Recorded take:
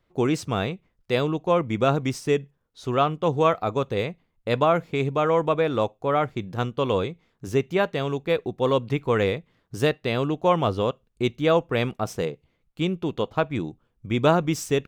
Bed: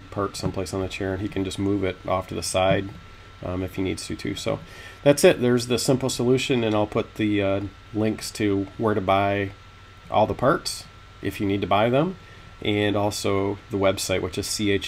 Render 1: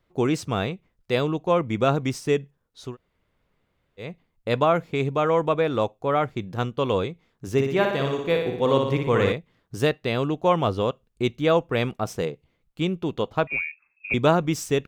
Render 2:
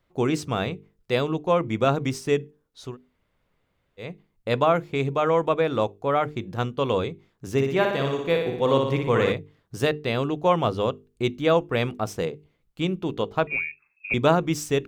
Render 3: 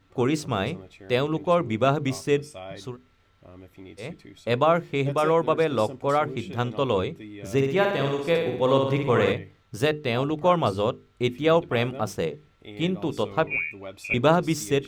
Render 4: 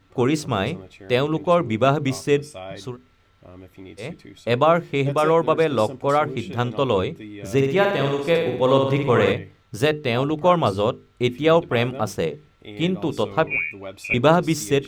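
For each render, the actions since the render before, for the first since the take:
2.89–4.05 s: room tone, crossfade 0.16 s; 7.52–9.32 s: flutter echo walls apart 10.1 m, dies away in 0.75 s; 13.47–14.14 s: frequency inversion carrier 2.6 kHz
hum notches 50/100/150/200/250/300/350/400/450 Hz
add bed -18.5 dB
trim +3.5 dB

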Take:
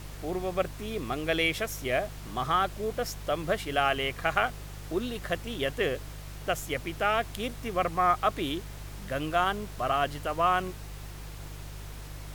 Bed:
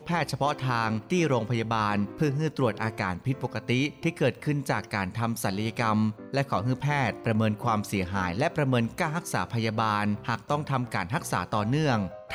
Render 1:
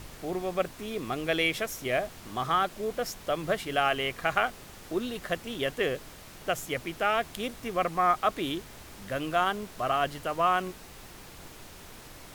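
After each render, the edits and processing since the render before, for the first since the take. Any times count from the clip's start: de-hum 50 Hz, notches 3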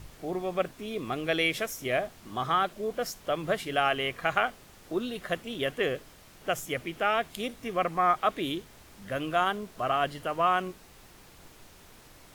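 noise print and reduce 6 dB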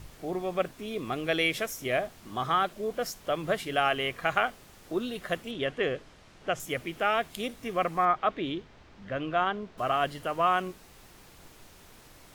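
5.51–6.60 s: distance through air 79 m; 8.05–9.78 s: distance through air 170 m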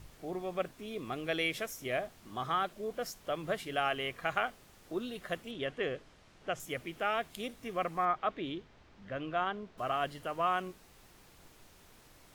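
trim -6 dB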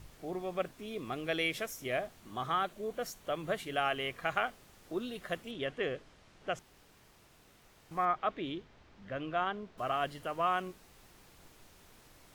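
2.19–3.97 s: band-stop 5.1 kHz; 6.59–7.91 s: room tone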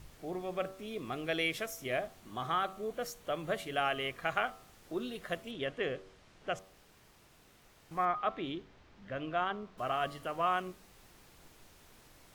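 de-hum 95.2 Hz, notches 14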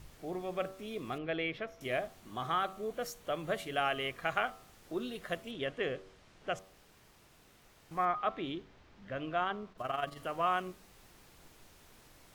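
1.18–1.81 s: distance through air 320 m; 9.72–10.17 s: AM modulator 22 Hz, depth 45%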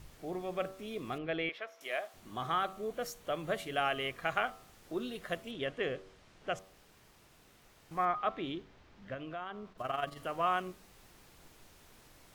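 1.49–2.14 s: high-pass 630 Hz; 9.14–9.70 s: compression 2.5:1, threshold -41 dBFS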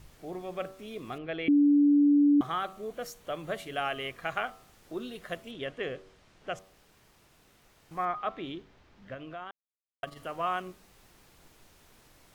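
1.48–2.41 s: bleep 289 Hz -18 dBFS; 9.51–10.03 s: mute

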